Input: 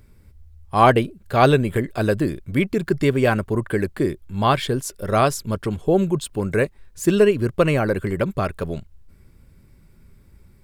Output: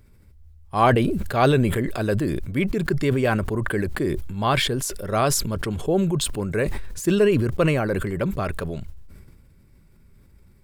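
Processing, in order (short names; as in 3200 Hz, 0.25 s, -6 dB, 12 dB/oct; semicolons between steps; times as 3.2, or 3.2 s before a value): sustainer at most 32 dB/s; gain -4 dB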